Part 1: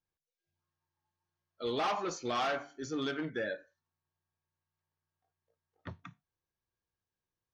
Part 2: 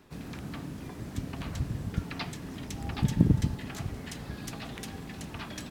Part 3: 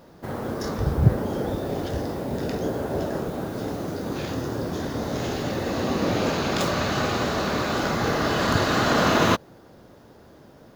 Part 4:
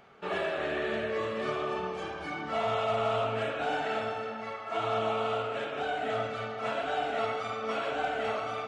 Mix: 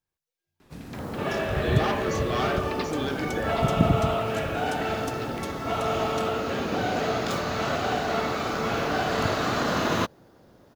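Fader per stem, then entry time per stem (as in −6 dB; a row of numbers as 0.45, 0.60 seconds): +3.0, +0.5, −5.5, +2.5 decibels; 0.00, 0.60, 0.70, 0.95 seconds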